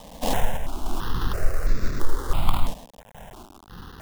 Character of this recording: aliases and images of a low sample rate 2300 Hz, jitter 20%; random-step tremolo; a quantiser's noise floor 8-bit, dither none; notches that jump at a steady rate 3 Hz 370–3100 Hz

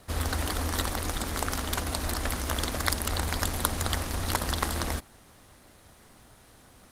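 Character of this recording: a quantiser's noise floor 12-bit, dither none; Opus

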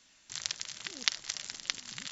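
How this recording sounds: noise floor -64 dBFS; spectral tilt +1.5 dB/oct

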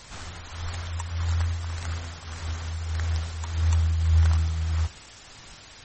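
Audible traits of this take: tremolo triangle 1.7 Hz, depth 55%; a quantiser's noise floor 8-bit, dither triangular; MP3

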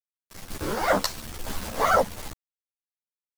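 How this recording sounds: a quantiser's noise floor 6-bit, dither none; random-step tremolo 4.1 Hz; a shimmering, thickened sound

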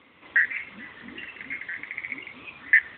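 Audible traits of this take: a quantiser's noise floor 10-bit, dither none; AMR-NB

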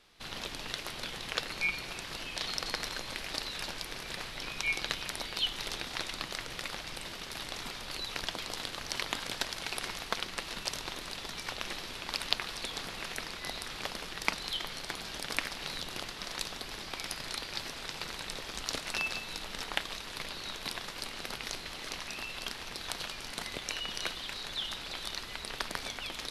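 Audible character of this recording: noise floor -44 dBFS; spectral tilt -3.0 dB/oct

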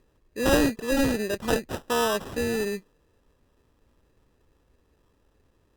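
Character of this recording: aliases and images of a low sample rate 2200 Hz, jitter 0%; Opus

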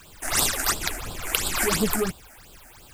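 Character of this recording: a quantiser's noise floor 10-bit, dither triangular; phasing stages 8, 2.9 Hz, lowest notch 130–2000 Hz

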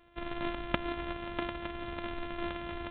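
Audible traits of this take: a buzz of ramps at a fixed pitch in blocks of 128 samples; G.726

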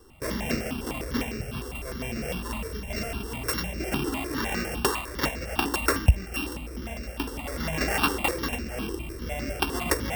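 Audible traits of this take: a buzz of ramps at a fixed pitch in blocks of 16 samples; notches that jump at a steady rate 9.9 Hz 640–3200 Hz

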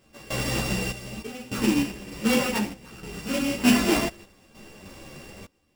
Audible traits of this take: a buzz of ramps at a fixed pitch in blocks of 16 samples; random-step tremolo 3.3 Hz, depth 95%; aliases and images of a low sample rate 13000 Hz, jitter 0%; a shimmering, thickened sound

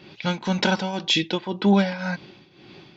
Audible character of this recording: tremolo triangle 1.9 Hz, depth 80%

